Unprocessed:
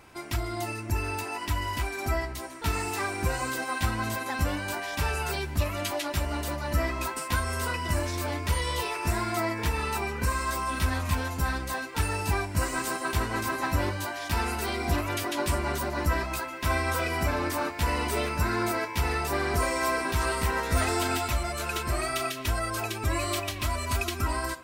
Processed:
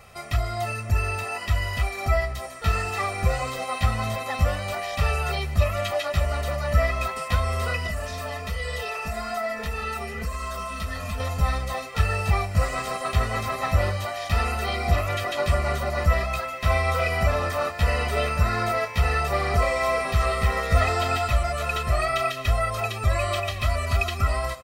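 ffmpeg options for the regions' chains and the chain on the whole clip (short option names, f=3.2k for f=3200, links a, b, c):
-filter_complex "[0:a]asettb=1/sr,asplit=3[a][b][c];[a]atrim=end=7.874[d];[b]atrim=start=7.87:end=11.2,asetpts=PTS-STARTPTS,afade=t=in:d=0.004:c=qsin,afade=t=out:st=3.326:d=0.004:c=qsin,aecho=1:1:4.5:0.93,atrim=end_sample=146853,acompressor=threshold=-26dB:ratio=4:attack=3.2:release=140:knee=1:detection=peak,flanger=delay=2.6:depth=6.4:regen=-83:speed=1.2:shape=sinusoidal[e];[c]atrim=start=11.196[f];[d][e]acrossfade=d=0.004:c1=hsin:c2=qsin[g];[g][f]acrossfade=d=0.004:c1=qsin:c2=hsin,acrossover=split=4500[h][i];[i]acompressor=threshold=-47dB:ratio=4:attack=1:release=60[j];[h][j]amix=inputs=2:normalize=0,aecho=1:1:1.6:0.97,volume=1.5dB"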